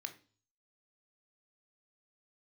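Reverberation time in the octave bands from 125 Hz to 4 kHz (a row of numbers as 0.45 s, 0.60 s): 0.70 s, 0.50 s, 0.45 s, 0.35 s, 0.35 s, 0.45 s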